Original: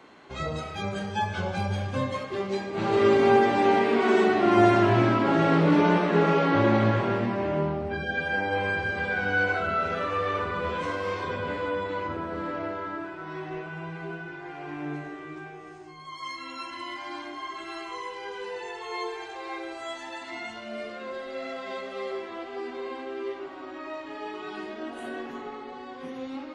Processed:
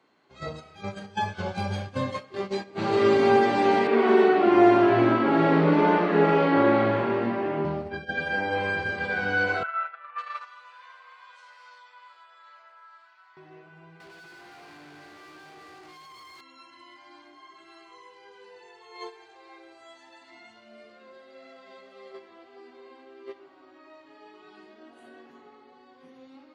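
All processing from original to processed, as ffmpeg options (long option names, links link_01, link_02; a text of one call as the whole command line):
ffmpeg -i in.wav -filter_complex "[0:a]asettb=1/sr,asplit=3[link_01][link_02][link_03];[link_01]atrim=end=3.874[link_04];[link_02]atrim=start=3.87:end=7.65,asetpts=PTS-STARTPTS,afade=type=in:duration=0.004:curve=qsin,afade=type=out:start_time=3.776:duration=0.004:curve=qsin,acrossover=split=160 3300:gain=0.251 1 0.224[link_05][link_06][link_07];[link_05][link_06][link_07]amix=inputs=3:normalize=0,asplit=2[link_08][link_09];[link_09]adelay=43,volume=-5dB[link_10];[link_08][link_10]amix=inputs=2:normalize=0,atrim=end_sample=166698[link_11];[link_03]atrim=start=7.646[link_12];[link_04][link_11]acrossfade=duration=0.004:curve1=hsin:curve2=qsin[link_13];[link_13][link_12]acrossfade=duration=0.004:curve1=qsin:curve2=hsin,asettb=1/sr,asplit=3[link_14][link_15][link_16];[link_14]atrim=end=9.634[link_17];[link_15]atrim=start=9.63:end=13.37,asetpts=PTS-STARTPTS,afade=type=in:duration=0.004:curve=qsin,afade=type=out:start_time=3.736:duration=0.004:curve=qsin,highpass=frequency=970:width=0.5412,highpass=frequency=970:width=1.3066,acrossover=split=2500[link_18][link_19];[link_19]adelay=550[link_20];[link_18][link_20]amix=inputs=2:normalize=0,atrim=end_sample=164934[link_21];[link_16]atrim=start=13.366[link_22];[link_17][link_21]acrossfade=duration=0.004:curve1=hsin:curve2=qsin[link_23];[link_23][link_22]acrossfade=duration=0.004:curve1=qsin:curve2=hsin,asettb=1/sr,asplit=3[link_24][link_25][link_26];[link_24]atrim=end=14.004[link_27];[link_25]atrim=start=14:end=16.41,asetpts=PTS-STARTPTS,afade=type=in:duration=0.004:curve=qsin,afade=type=out:start_time=2.406:duration=0.004:curve=qsin,acompressor=threshold=-39dB:ratio=6:attack=3.2:release=140:knee=1:detection=peak,asplit=2[link_28][link_29];[link_29]highpass=frequency=720:poles=1,volume=38dB,asoftclip=type=tanh:threshold=-28.5dB[link_30];[link_28][link_30]amix=inputs=2:normalize=0,lowpass=frequency=3400:poles=1,volume=-6dB,aecho=1:1:586:0.299,atrim=end_sample=106281[link_31];[link_26]atrim=start=16.406[link_32];[link_27][link_31]acrossfade=duration=0.004:curve1=hsin:curve2=qsin[link_33];[link_33][link_32]acrossfade=duration=0.004:curve1=qsin:curve2=hsin,highpass=86,agate=range=-14dB:threshold=-30dB:ratio=16:detection=peak,equalizer=frequency=4500:width_type=o:width=0.22:gain=6" out.wav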